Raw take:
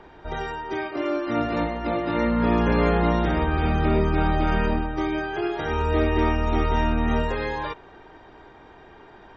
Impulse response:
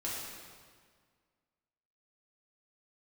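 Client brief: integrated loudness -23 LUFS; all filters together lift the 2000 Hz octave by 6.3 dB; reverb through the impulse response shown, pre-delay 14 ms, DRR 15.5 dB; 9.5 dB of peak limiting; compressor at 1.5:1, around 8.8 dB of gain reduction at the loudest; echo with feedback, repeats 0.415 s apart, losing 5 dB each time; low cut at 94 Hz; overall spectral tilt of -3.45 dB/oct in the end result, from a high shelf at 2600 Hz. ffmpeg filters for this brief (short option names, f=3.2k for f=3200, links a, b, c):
-filter_complex "[0:a]highpass=94,equalizer=f=2k:t=o:g=6,highshelf=f=2.6k:g=4.5,acompressor=threshold=-42dB:ratio=1.5,alimiter=level_in=3dB:limit=-24dB:level=0:latency=1,volume=-3dB,aecho=1:1:415|830|1245|1660|2075|2490|2905:0.562|0.315|0.176|0.0988|0.0553|0.031|0.0173,asplit=2[a][b];[1:a]atrim=start_sample=2205,adelay=14[c];[b][c]afir=irnorm=-1:irlink=0,volume=-18.5dB[d];[a][d]amix=inputs=2:normalize=0,volume=11.5dB"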